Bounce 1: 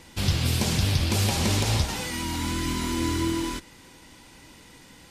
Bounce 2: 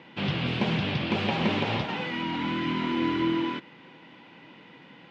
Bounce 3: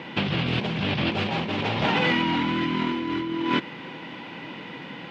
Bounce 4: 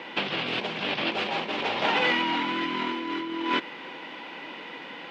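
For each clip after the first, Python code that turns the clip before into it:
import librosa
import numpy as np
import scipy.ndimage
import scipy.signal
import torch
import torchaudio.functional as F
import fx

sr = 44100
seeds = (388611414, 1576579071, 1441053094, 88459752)

y1 = scipy.signal.sosfilt(scipy.signal.ellip(3, 1.0, 70, [150.0, 3000.0], 'bandpass', fs=sr, output='sos'), x)
y1 = y1 * 10.0 ** (2.0 / 20.0)
y2 = fx.over_compress(y1, sr, threshold_db=-33.0, ratio=-1.0)
y2 = y2 * 10.0 ** (7.5 / 20.0)
y3 = scipy.signal.sosfilt(scipy.signal.butter(2, 370.0, 'highpass', fs=sr, output='sos'), y2)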